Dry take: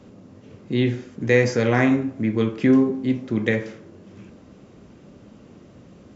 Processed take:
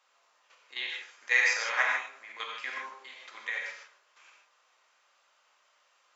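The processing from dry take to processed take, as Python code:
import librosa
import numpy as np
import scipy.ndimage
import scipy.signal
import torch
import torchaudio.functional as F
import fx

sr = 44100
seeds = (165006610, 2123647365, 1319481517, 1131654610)

y = scipy.signal.sosfilt(scipy.signal.butter(4, 960.0, 'highpass', fs=sr, output='sos'), x)
y = fx.level_steps(y, sr, step_db=12)
y = fx.rev_gated(y, sr, seeds[0], gate_ms=180, shape='flat', drr_db=-1.0)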